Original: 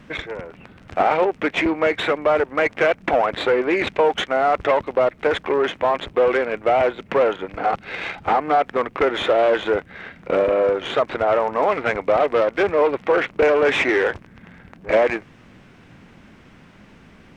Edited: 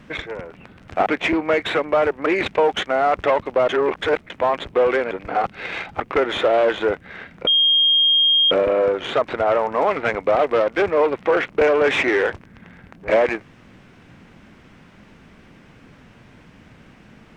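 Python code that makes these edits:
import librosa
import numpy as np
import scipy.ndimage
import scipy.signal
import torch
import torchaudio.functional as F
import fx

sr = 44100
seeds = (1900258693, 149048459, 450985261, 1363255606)

y = fx.edit(x, sr, fx.cut(start_s=1.06, length_s=0.33),
    fx.cut(start_s=2.59, length_s=1.08),
    fx.reverse_span(start_s=5.1, length_s=0.61),
    fx.cut(start_s=6.52, length_s=0.88),
    fx.cut(start_s=8.29, length_s=0.56),
    fx.insert_tone(at_s=10.32, length_s=1.04, hz=3230.0, db=-12.5), tone=tone)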